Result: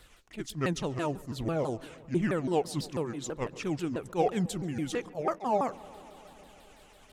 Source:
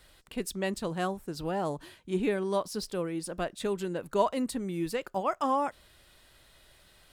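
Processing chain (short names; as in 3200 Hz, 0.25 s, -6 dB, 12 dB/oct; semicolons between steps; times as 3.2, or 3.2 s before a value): repeated pitch sweeps -7.5 st, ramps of 0.165 s; darkening echo 0.139 s, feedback 83%, low-pass 3500 Hz, level -22 dB; phaser 1.4 Hz, delay 3.4 ms, feedback 26%; attack slew limiter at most 290 dB/s; gain +1.5 dB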